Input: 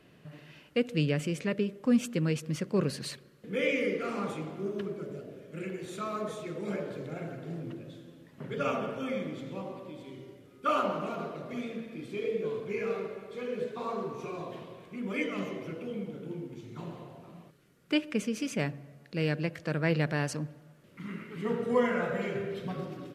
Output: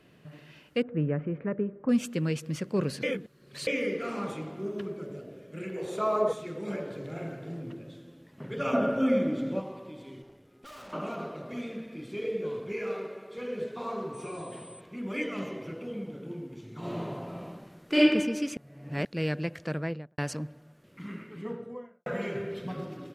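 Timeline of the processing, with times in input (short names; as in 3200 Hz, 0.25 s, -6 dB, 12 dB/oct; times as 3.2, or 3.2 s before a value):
0.82–1.89 LPF 1600 Hz 24 dB/oct
3.03–3.67 reverse
5.76–6.33 band shelf 670 Hz +12 dB
7–7.49 doubler 43 ms -6 dB
8.73–9.6 small resonant body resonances 260/570/1400 Hz, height 12 dB, ringing for 25 ms
10.22–10.93 tube stage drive 46 dB, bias 0.65
12.72–13.38 Bessel high-pass 210 Hz
14.13–14.79 whine 8100 Hz -49 dBFS
16.79–17.99 reverb throw, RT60 1.2 s, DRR -9 dB
18.57–19.05 reverse
19.64–20.18 studio fade out
21.01–22.06 studio fade out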